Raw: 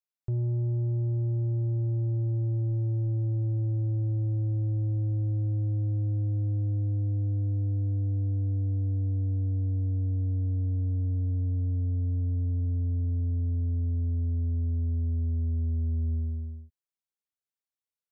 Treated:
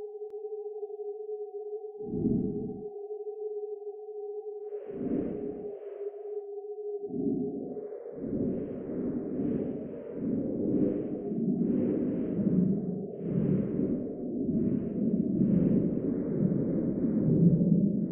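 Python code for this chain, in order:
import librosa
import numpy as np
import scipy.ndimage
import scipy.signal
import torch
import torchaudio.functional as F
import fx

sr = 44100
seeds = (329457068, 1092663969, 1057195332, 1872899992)

y = fx.sine_speech(x, sr)
y = fx.paulstretch(y, sr, seeds[0], factor=6.5, window_s=0.1, from_s=5.97)
y = y + 10.0 ** (-9.0 / 20.0) * np.pad(y, (int(304 * sr / 1000.0), 0))[:len(y)]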